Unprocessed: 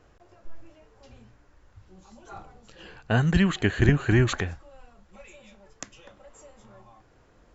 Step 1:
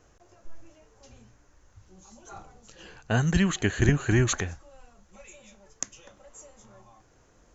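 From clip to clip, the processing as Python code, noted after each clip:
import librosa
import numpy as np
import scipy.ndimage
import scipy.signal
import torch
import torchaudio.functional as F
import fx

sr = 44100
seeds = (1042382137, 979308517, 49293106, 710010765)

y = fx.peak_eq(x, sr, hz=6400.0, db=13.0, octaves=0.46)
y = y * 10.0 ** (-2.0 / 20.0)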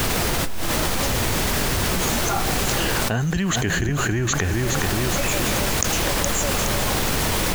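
y = fx.dmg_noise_colour(x, sr, seeds[0], colour='pink', level_db=-46.0)
y = fx.echo_feedback(y, sr, ms=418, feedback_pct=37, wet_db=-16.0)
y = fx.env_flatten(y, sr, amount_pct=100)
y = y * 10.0 ** (-4.5 / 20.0)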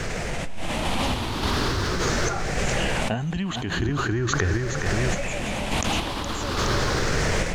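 y = fx.spec_ripple(x, sr, per_octave=0.54, drift_hz=0.41, depth_db=7)
y = fx.tremolo_random(y, sr, seeds[1], hz=3.5, depth_pct=55)
y = fx.air_absorb(y, sr, metres=83.0)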